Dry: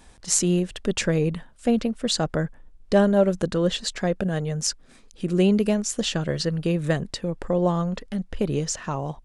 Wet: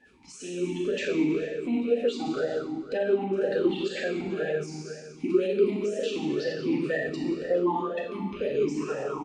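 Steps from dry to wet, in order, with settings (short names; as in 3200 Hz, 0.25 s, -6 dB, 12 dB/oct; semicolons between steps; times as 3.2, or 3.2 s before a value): bin magnitudes rounded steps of 30 dB; bell 430 Hz -7.5 dB 1.8 oct; echo 0.432 s -23 dB; reverb RT60 1.8 s, pre-delay 4 ms, DRR -5 dB; maximiser +16 dB; vowel sweep e-u 2 Hz; gain -6 dB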